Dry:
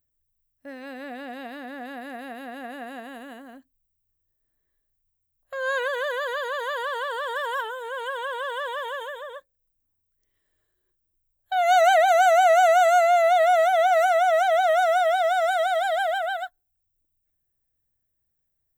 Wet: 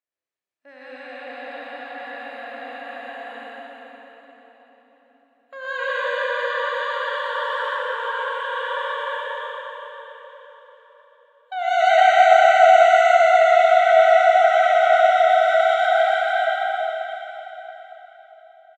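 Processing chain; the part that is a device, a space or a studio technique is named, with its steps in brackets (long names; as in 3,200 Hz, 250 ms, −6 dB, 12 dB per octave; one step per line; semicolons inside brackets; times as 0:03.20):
station announcement (band-pass filter 490–4,700 Hz; parametric band 2,400 Hz +4 dB 0.29 octaves; loudspeakers that aren't time-aligned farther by 12 metres −11 dB, 42 metres −4 dB; convolution reverb RT60 4.5 s, pre-delay 68 ms, DRR −6.5 dB)
level −4.5 dB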